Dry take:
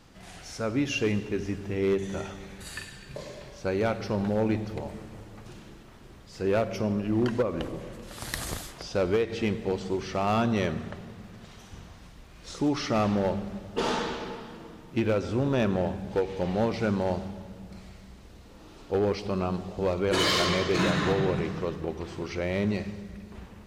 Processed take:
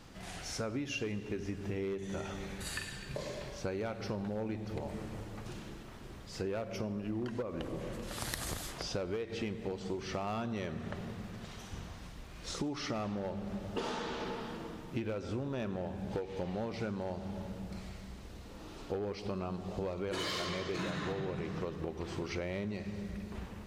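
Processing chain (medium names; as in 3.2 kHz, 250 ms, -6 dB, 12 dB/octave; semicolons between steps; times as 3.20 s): compression 10:1, threshold -35 dBFS, peak gain reduction 14 dB; trim +1 dB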